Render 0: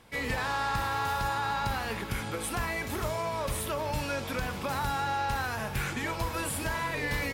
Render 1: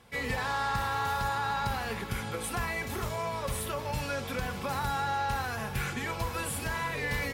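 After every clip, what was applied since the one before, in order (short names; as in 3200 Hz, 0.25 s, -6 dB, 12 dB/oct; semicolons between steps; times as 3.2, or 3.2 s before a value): notch comb 310 Hz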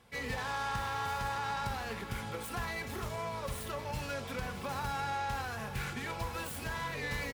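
self-modulated delay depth 0.094 ms; echo 1.022 s -16.5 dB; gain -4.5 dB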